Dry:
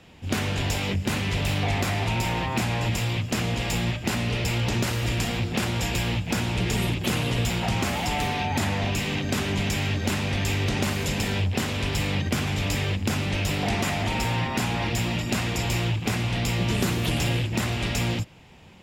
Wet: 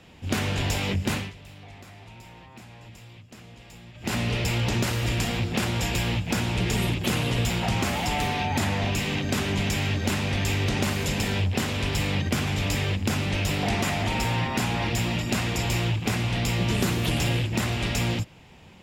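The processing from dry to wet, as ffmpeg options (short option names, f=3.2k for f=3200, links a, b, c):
-filter_complex "[0:a]asplit=3[a][b][c];[a]atrim=end=1.33,asetpts=PTS-STARTPTS,afade=t=out:st=1.12:d=0.21:silence=0.0944061[d];[b]atrim=start=1.33:end=3.94,asetpts=PTS-STARTPTS,volume=-20.5dB[e];[c]atrim=start=3.94,asetpts=PTS-STARTPTS,afade=t=in:d=0.21:silence=0.0944061[f];[d][e][f]concat=n=3:v=0:a=1"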